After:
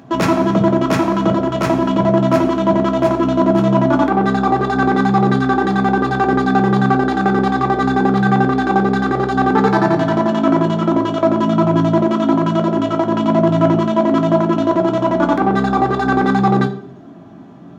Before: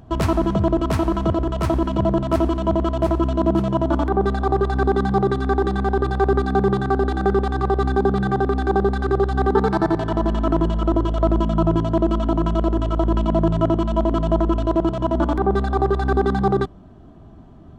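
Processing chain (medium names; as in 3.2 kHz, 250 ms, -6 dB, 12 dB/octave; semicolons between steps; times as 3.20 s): high-pass 140 Hz 12 dB/octave; in parallel at -8 dB: saturation -21 dBFS, distortion -9 dB; on the sum: reverberation RT60 0.50 s, pre-delay 3 ms, DRR 4 dB; trim +2.5 dB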